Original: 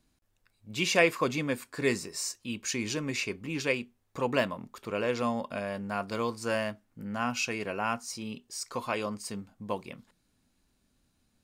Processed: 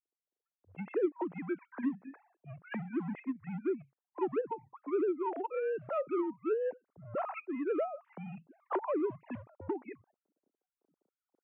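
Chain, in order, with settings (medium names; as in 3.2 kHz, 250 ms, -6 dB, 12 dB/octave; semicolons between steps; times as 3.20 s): formants replaced by sine waves; recorder AGC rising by 9.2 dB/s; low-pass that closes with the level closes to 450 Hz, closed at -20.5 dBFS; tilt EQ -3 dB/octave; in parallel at -8 dB: overload inside the chain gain 27 dB; on the sum: mistuned SSB -130 Hz 450–3000 Hz; level-controlled noise filter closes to 410 Hz, open at -25 dBFS; trim -7 dB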